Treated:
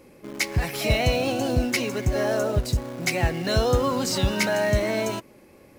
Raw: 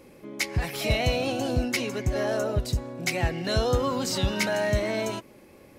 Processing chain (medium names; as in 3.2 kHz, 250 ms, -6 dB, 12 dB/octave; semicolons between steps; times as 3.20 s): peaking EQ 3.4 kHz -2.5 dB 0.4 oct; in parallel at -8 dB: bit crusher 6-bit